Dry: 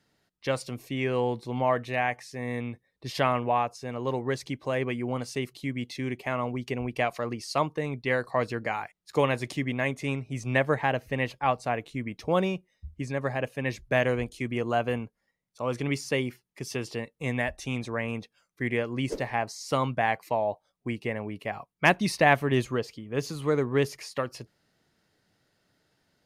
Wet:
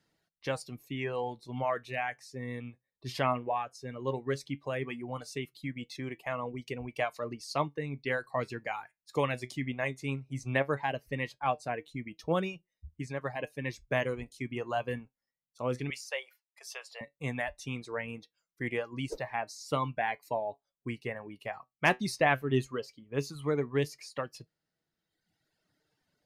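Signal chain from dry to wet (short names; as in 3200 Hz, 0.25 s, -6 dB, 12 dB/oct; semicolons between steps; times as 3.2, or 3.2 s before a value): reverb removal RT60 1.5 s; 15.9–17.01 elliptic high-pass 550 Hz, stop band 50 dB; flange 0.16 Hz, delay 6 ms, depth 2 ms, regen +70%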